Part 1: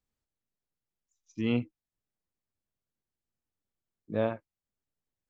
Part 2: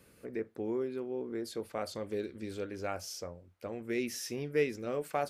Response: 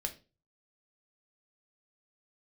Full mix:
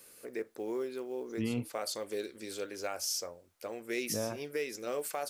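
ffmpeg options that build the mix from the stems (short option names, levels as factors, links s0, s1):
-filter_complex "[0:a]alimiter=limit=0.0944:level=0:latency=1:release=16,volume=0.841,asplit=2[s0][s1];[1:a]bass=f=250:g=-15,treble=f=4000:g=11,acrusher=bits=8:mode=log:mix=0:aa=0.000001,volume=1.19[s2];[s1]apad=whole_len=233594[s3];[s2][s3]sidechaincompress=threshold=0.01:ratio=8:attack=16:release=106[s4];[s0][s4]amix=inputs=2:normalize=0,alimiter=limit=0.0668:level=0:latency=1:release=162"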